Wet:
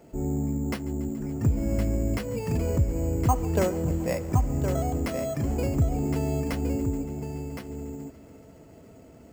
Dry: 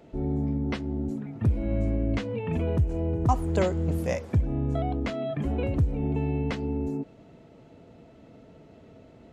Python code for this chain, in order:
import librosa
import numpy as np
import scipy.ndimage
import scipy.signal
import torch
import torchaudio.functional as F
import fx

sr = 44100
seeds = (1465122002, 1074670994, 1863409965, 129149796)

y = fx.echo_bbd(x, sr, ms=142, stages=4096, feedback_pct=85, wet_db=-20.5)
y = np.repeat(scipy.signal.resample_poly(y, 1, 6), 6)[:len(y)]
y = y + 10.0 ** (-7.0 / 20.0) * np.pad(y, (int(1065 * sr / 1000.0), 0))[:len(y)]